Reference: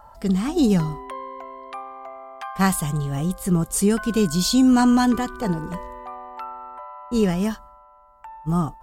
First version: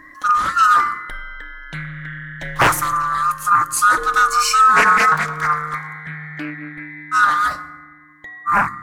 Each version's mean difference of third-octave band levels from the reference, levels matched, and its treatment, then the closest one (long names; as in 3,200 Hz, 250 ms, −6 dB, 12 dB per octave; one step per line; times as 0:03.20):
9.5 dB: neighbouring bands swapped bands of 1,000 Hz
feedback delay network reverb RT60 1.3 s, low-frequency decay 1.1×, high-frequency decay 0.45×, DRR 10.5 dB
highs frequency-modulated by the lows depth 0.8 ms
level +4 dB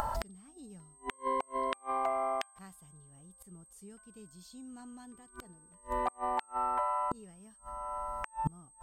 14.0 dB: upward compression, threshold −30 dBFS
gate with flip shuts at −24 dBFS, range −37 dB
steady tone 8,300 Hz −63 dBFS
level +4 dB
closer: first